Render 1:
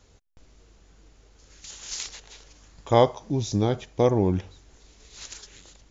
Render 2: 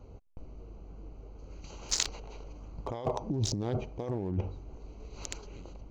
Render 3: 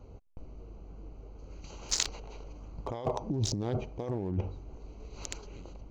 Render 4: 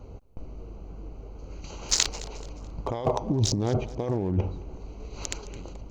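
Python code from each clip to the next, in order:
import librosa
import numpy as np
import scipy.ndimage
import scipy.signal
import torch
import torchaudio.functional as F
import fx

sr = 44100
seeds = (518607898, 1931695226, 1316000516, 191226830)

y1 = fx.wiener(x, sr, points=25)
y1 = fx.over_compress(y1, sr, threshold_db=-32.0, ratio=-1.0)
y2 = y1
y3 = fx.echo_feedback(y2, sr, ms=215, feedback_pct=36, wet_db=-19)
y3 = F.gain(torch.from_numpy(y3), 6.5).numpy()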